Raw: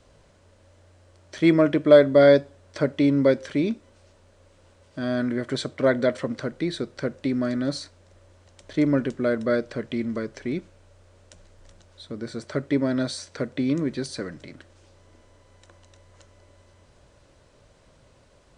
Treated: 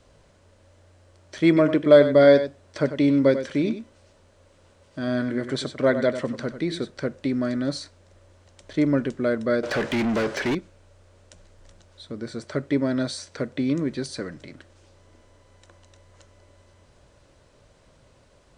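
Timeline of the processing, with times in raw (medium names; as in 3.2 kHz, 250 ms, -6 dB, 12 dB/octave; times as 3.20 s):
1.47–6.90 s: delay 96 ms -11 dB
9.63–10.55 s: overdrive pedal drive 30 dB, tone 3.2 kHz, clips at -16.5 dBFS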